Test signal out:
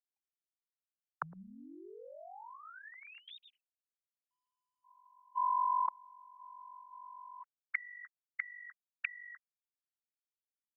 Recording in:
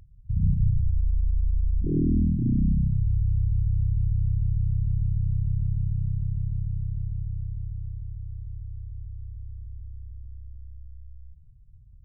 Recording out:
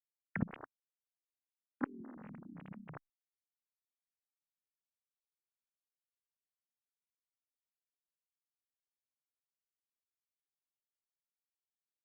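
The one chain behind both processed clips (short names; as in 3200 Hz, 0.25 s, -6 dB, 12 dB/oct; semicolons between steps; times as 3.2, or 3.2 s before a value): sine-wave speech; spectral noise reduction 21 dB; expander -49 dBFS; reverse; compressor 10:1, threshold -30 dBFS; reverse; flipped gate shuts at -37 dBFS, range -35 dB; gain +17 dB; Opus 64 kbps 48000 Hz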